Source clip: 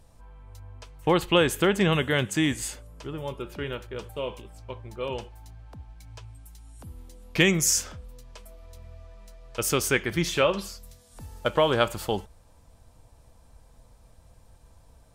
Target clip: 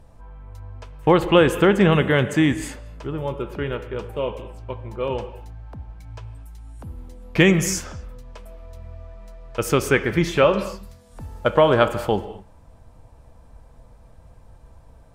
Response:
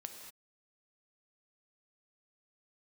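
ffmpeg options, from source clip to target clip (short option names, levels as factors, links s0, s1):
-filter_complex "[0:a]highshelf=f=4100:g=-7,asplit=2[s0][s1];[1:a]atrim=start_sample=2205,lowpass=2700[s2];[s1][s2]afir=irnorm=-1:irlink=0,volume=1.12[s3];[s0][s3]amix=inputs=2:normalize=0,volume=1.33"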